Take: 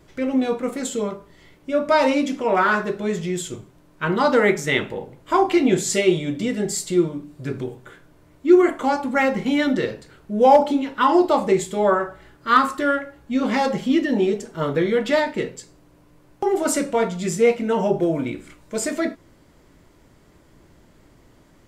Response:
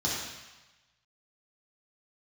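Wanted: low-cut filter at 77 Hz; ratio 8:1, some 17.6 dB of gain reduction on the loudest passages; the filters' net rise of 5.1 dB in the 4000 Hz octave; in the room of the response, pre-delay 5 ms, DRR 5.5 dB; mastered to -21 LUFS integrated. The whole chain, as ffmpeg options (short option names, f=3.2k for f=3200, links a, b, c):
-filter_complex "[0:a]highpass=77,equalizer=f=4k:t=o:g=6.5,acompressor=threshold=-27dB:ratio=8,asplit=2[a][b];[1:a]atrim=start_sample=2205,adelay=5[c];[b][c]afir=irnorm=-1:irlink=0,volume=-14.5dB[d];[a][d]amix=inputs=2:normalize=0,volume=9dB"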